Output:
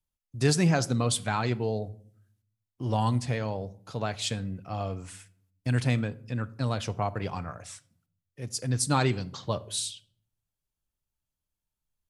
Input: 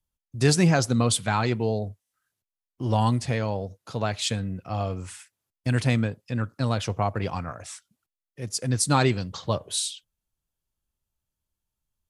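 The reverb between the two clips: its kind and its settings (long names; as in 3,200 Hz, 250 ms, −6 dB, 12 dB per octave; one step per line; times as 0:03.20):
rectangular room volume 1,000 cubic metres, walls furnished, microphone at 0.38 metres
level −4 dB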